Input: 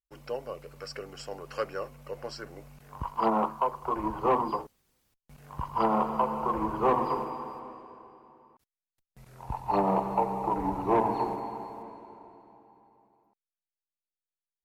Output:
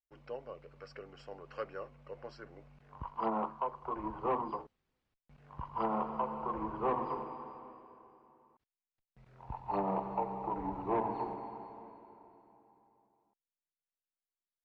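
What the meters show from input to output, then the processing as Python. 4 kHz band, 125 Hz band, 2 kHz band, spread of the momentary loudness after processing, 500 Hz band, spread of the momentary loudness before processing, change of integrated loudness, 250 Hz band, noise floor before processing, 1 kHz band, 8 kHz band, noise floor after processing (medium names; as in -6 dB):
under -10 dB, -8.0 dB, -8.5 dB, 18 LU, -8.0 dB, 19 LU, -7.5 dB, -8.0 dB, under -85 dBFS, -8.0 dB, no reading, under -85 dBFS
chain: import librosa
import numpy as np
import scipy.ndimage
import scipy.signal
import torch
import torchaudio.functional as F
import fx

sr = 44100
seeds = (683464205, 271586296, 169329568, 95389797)

y = scipy.signal.sosfilt(scipy.signal.butter(2, 3200.0, 'lowpass', fs=sr, output='sos'), x)
y = F.gain(torch.from_numpy(y), -8.0).numpy()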